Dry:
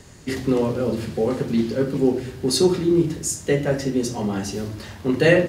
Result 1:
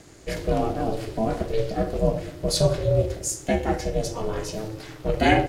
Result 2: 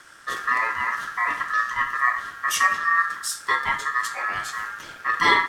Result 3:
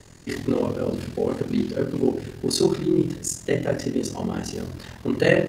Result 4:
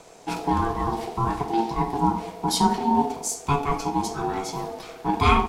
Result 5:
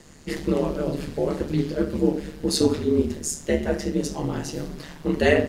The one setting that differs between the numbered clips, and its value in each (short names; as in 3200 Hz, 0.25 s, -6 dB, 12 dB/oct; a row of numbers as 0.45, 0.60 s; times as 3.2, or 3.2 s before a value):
ring modulator, frequency: 220, 1500, 21, 570, 74 Hz